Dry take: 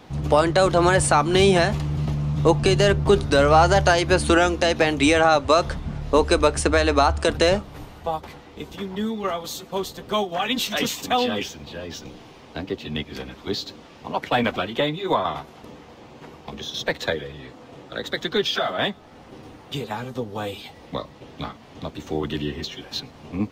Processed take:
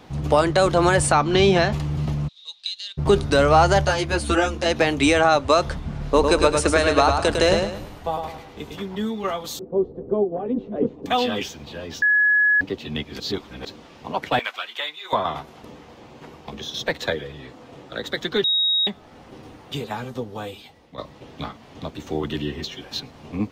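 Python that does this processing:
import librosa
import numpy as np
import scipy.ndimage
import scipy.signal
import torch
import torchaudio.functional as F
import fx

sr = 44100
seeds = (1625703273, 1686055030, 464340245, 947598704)

y = fx.lowpass(x, sr, hz=6000.0, slope=24, at=(1.12, 1.73))
y = fx.ladder_bandpass(y, sr, hz=3900.0, resonance_pct=85, at=(2.27, 2.97), fade=0.02)
y = fx.ensemble(y, sr, at=(3.85, 4.66))
y = fx.echo_feedback(y, sr, ms=104, feedback_pct=34, wet_db=-5.0, at=(5.89, 8.78))
y = fx.lowpass_res(y, sr, hz=430.0, q=2.5, at=(9.59, 11.06))
y = fx.highpass(y, sr, hz=1300.0, slope=12, at=(14.39, 15.13))
y = fx.edit(y, sr, fx.bleep(start_s=12.02, length_s=0.59, hz=1690.0, db=-14.0),
    fx.reverse_span(start_s=13.2, length_s=0.45),
    fx.bleep(start_s=18.44, length_s=0.43, hz=3780.0, db=-17.0),
    fx.fade_out_to(start_s=20.09, length_s=0.89, floor_db=-13.5), tone=tone)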